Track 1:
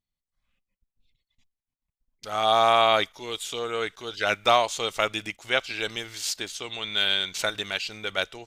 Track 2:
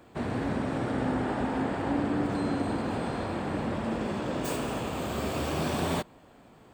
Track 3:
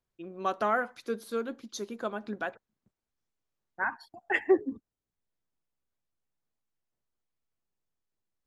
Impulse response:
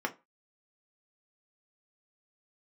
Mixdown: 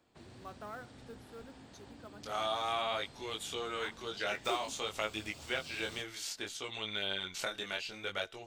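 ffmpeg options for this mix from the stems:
-filter_complex "[0:a]acrossover=split=930|2300[link_01][link_02][link_03];[link_01]acompressor=threshold=-33dB:ratio=4[link_04];[link_02]acompressor=threshold=-35dB:ratio=4[link_05];[link_03]acompressor=threshold=-33dB:ratio=4[link_06];[link_04][link_05][link_06]amix=inputs=3:normalize=0,flanger=delay=18.5:depth=5.8:speed=0.59,volume=-3.5dB,asplit=2[link_07][link_08];[link_08]volume=-20.5dB[link_09];[1:a]equalizer=frequency=5100:width=0.67:gain=10,acrossover=split=130|3000[link_10][link_11][link_12];[link_11]acompressor=threshold=-41dB:ratio=2.5[link_13];[link_10][link_13][link_12]amix=inputs=3:normalize=0,volume=-18.5dB[link_14];[2:a]acrusher=bits=6:mode=log:mix=0:aa=0.000001,volume=-18.5dB[link_15];[3:a]atrim=start_sample=2205[link_16];[link_09][link_16]afir=irnorm=-1:irlink=0[link_17];[link_07][link_14][link_15][link_17]amix=inputs=4:normalize=0"

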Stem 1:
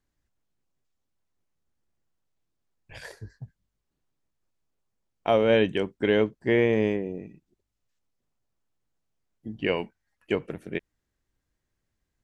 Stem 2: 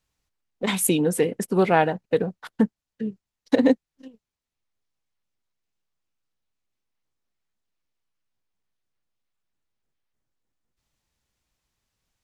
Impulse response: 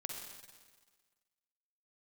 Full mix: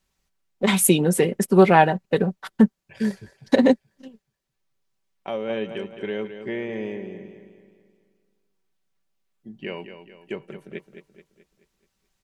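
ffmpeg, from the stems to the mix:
-filter_complex "[0:a]highpass=98,acompressor=threshold=-25dB:ratio=1.5,volume=2.5dB,asplit=2[link_01][link_02];[link_02]volume=-18dB[link_03];[1:a]volume=3dB,asplit=2[link_04][link_05];[link_05]apad=whole_len=539705[link_06];[link_01][link_06]sidechaingate=range=-8dB:threshold=-52dB:ratio=16:detection=peak[link_07];[link_03]aecho=0:1:215|430|645|860|1075|1290|1505:1|0.47|0.221|0.104|0.0488|0.0229|0.0108[link_08];[link_07][link_04][link_08]amix=inputs=3:normalize=0,aecho=1:1:5.2:0.47"

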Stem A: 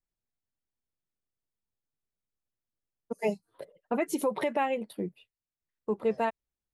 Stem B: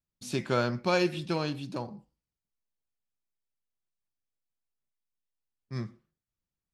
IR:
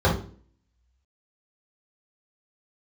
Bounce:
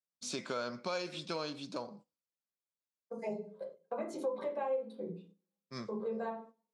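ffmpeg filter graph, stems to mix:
-filter_complex "[0:a]volume=-11dB,asplit=2[link_01][link_02];[link_02]volume=-9dB[link_03];[1:a]alimiter=limit=-19.5dB:level=0:latency=1:release=22,volume=3dB,asplit=2[link_04][link_05];[link_05]apad=whole_len=296895[link_06];[link_01][link_06]sidechaincompress=threshold=-39dB:ratio=8:attack=16:release=744[link_07];[2:a]atrim=start_sample=2205[link_08];[link_03][link_08]afir=irnorm=-1:irlink=0[link_09];[link_07][link_04][link_09]amix=inputs=3:normalize=0,agate=range=-9dB:threshold=-46dB:ratio=16:detection=peak,highpass=350,equalizer=frequency=350:width_type=q:width=4:gain=-8,equalizer=frequency=810:width_type=q:width=4:gain=-8,equalizer=frequency=1800:width_type=q:width=4:gain=-9,equalizer=frequency=2800:width_type=q:width=4:gain=-7,lowpass=frequency=8200:width=0.5412,lowpass=frequency=8200:width=1.3066,acompressor=threshold=-36dB:ratio=2.5"

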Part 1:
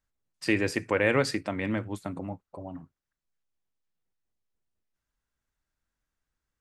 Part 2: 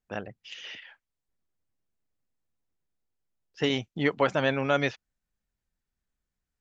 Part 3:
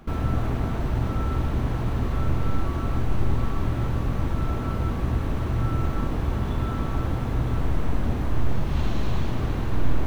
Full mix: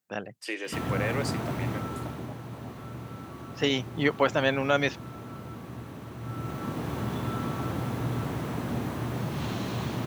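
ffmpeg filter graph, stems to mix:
ffmpeg -i stem1.wav -i stem2.wav -i stem3.wav -filter_complex "[0:a]highpass=frequency=350:width=0.5412,highpass=frequency=350:width=1.3066,volume=-7dB,asplit=2[link_01][link_02];[1:a]volume=0.5dB[link_03];[2:a]adelay=650,volume=8dB,afade=type=out:start_time=1.55:duration=0.8:silence=0.334965,afade=type=in:start_time=6.17:duration=0.76:silence=0.334965[link_04];[link_02]apad=whole_len=291325[link_05];[link_03][link_05]sidechaincompress=threshold=-42dB:ratio=8:attack=16:release=104[link_06];[link_01][link_06][link_04]amix=inputs=3:normalize=0,highpass=frequency=110:width=0.5412,highpass=frequency=110:width=1.3066,highshelf=frequency=6700:gain=8.5" out.wav

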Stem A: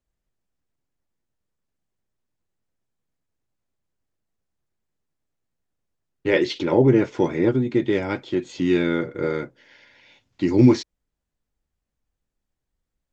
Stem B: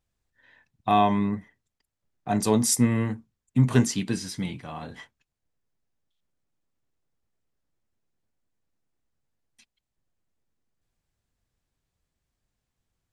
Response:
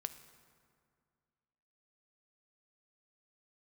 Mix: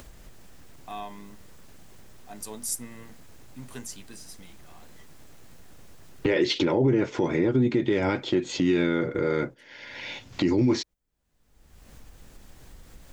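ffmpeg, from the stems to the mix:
-filter_complex "[0:a]agate=range=-12dB:threshold=-39dB:ratio=16:detection=peak,acompressor=mode=upward:threshold=-14dB:ratio=2.5,volume=0.5dB[link_01];[1:a]aemphasis=mode=production:type=bsi,volume=-16.5dB[link_02];[link_01][link_02]amix=inputs=2:normalize=0,alimiter=limit=-14dB:level=0:latency=1:release=66"

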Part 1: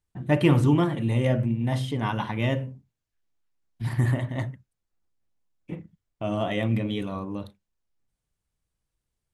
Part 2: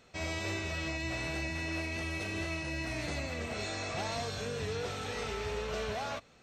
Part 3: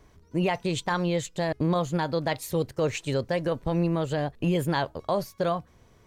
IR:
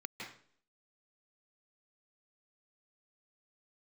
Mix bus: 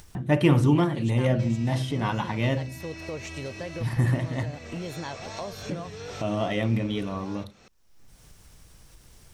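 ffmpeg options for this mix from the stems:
-filter_complex "[0:a]volume=0dB[link_01];[1:a]acompressor=threshold=-42dB:ratio=6,adelay=1250,volume=-2.5dB[link_02];[2:a]adelay=300,volume=-14.5dB[link_03];[link_01][link_02][link_03]amix=inputs=3:normalize=0,equalizer=frequency=5600:width=5.3:gain=6,acompressor=mode=upward:threshold=-27dB:ratio=2.5"

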